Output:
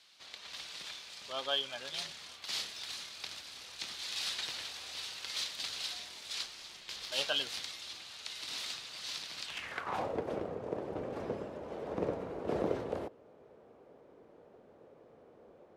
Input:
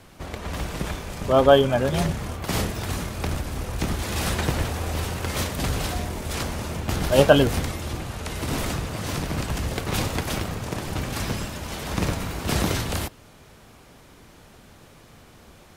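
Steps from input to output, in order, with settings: band-pass sweep 4100 Hz -> 480 Hz, 9.44–10.15; 6.46–7.12 ring modulator 270 Hz

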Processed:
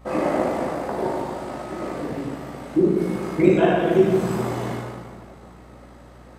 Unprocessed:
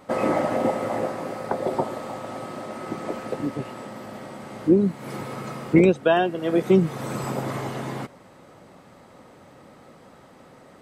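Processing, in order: plate-style reverb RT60 3.2 s, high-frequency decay 0.75×, DRR -7.5 dB; granular stretch 0.59×, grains 38 ms; hum 60 Hz, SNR 25 dB; gain -5.5 dB

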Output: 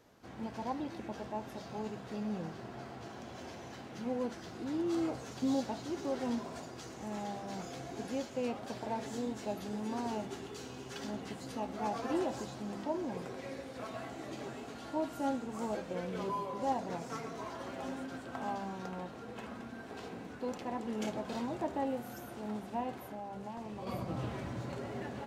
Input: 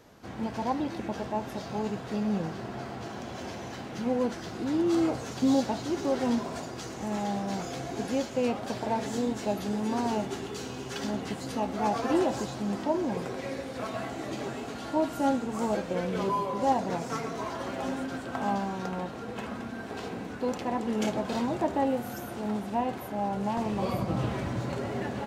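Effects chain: notches 50/100/150/200 Hz; 22.96–23.87 compressor, threshold -32 dBFS, peak gain reduction 7 dB; gain -8 dB

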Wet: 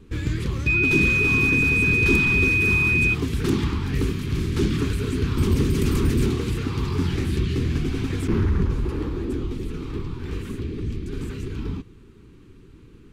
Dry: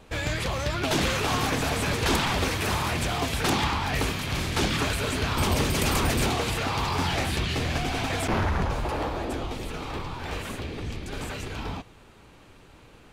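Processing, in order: EQ curve 400 Hz 0 dB, 650 Hz -29 dB, 1100 Hz -13 dB; 0.66–3.13 whine 2500 Hz -24 dBFS; gain +6 dB

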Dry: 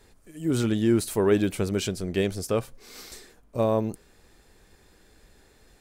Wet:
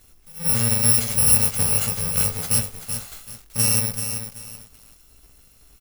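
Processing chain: FFT order left unsorted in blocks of 128 samples; doubler 18 ms -9 dB; lo-fi delay 0.382 s, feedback 35%, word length 7-bit, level -7.5 dB; gain +3.5 dB

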